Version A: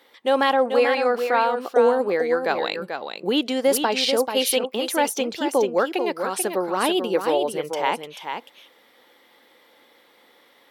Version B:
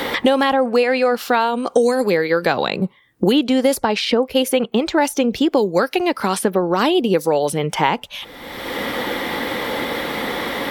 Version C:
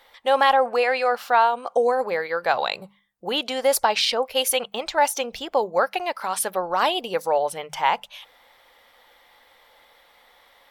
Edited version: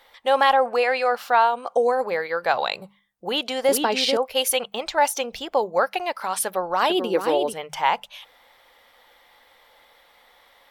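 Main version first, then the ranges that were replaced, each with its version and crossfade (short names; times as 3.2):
C
3.69–4.17 from A
6.9–7.53 from A
not used: B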